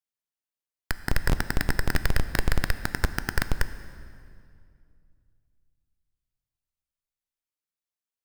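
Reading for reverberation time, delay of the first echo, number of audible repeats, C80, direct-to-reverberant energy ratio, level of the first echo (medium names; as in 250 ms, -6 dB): 2.3 s, no echo, no echo, 13.0 dB, 11.0 dB, no echo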